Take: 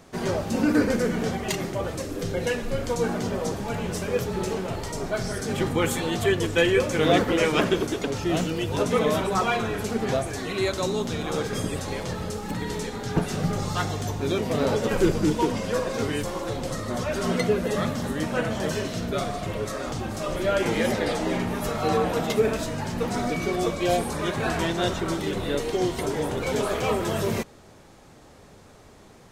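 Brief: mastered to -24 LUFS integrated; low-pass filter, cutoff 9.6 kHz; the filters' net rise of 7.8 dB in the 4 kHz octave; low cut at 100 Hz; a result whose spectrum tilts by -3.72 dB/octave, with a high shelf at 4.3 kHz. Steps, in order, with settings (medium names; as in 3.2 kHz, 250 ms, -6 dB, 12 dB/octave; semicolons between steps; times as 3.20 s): high-pass 100 Hz; low-pass 9.6 kHz; peaking EQ 4 kHz +6.5 dB; treble shelf 4.3 kHz +6.5 dB; trim +0.5 dB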